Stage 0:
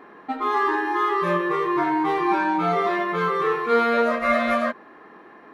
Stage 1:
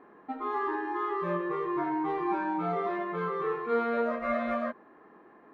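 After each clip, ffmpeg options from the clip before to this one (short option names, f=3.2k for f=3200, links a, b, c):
-af "lowpass=f=1.1k:p=1,volume=-7dB"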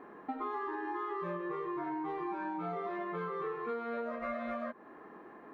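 -af "acompressor=threshold=-38dB:ratio=10,volume=3.5dB"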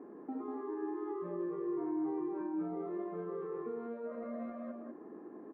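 -af "alimiter=level_in=9.5dB:limit=-24dB:level=0:latency=1:release=30,volume=-9.5dB,bandpass=f=300:t=q:w=1.6:csg=0,aecho=1:1:195:0.562,volume=5.5dB"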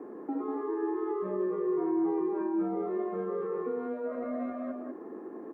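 -af "afreqshift=16,volume=7dB"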